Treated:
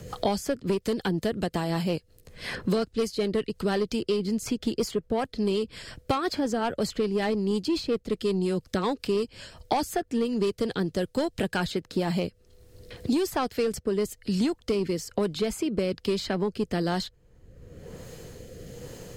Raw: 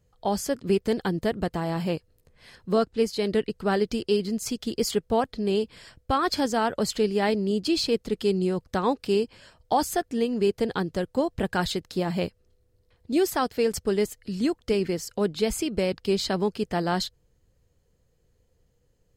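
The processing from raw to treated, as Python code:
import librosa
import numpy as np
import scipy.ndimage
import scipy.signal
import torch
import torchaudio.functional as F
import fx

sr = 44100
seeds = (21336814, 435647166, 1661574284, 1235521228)

y = fx.rotary_switch(x, sr, hz=5.5, then_hz=1.1, switch_at_s=11.52)
y = 10.0 ** (-19.0 / 20.0) * np.tanh(y / 10.0 ** (-19.0 / 20.0))
y = fx.band_squash(y, sr, depth_pct=100)
y = y * 10.0 ** (1.0 / 20.0)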